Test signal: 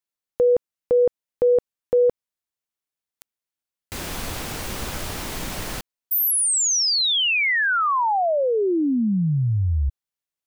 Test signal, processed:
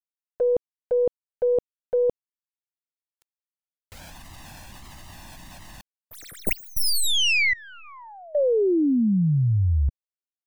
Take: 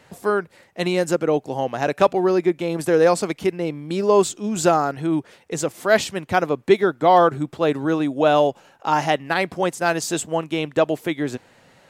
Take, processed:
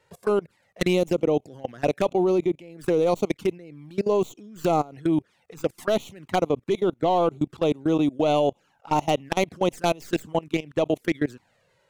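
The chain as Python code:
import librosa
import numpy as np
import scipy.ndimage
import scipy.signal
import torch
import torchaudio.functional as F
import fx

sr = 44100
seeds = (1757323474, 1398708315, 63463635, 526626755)

y = fx.tracing_dist(x, sr, depth_ms=0.099)
y = fx.env_flanger(y, sr, rest_ms=2.2, full_db=-17.0)
y = fx.level_steps(y, sr, step_db=23)
y = y * 10.0 ** (3.0 / 20.0)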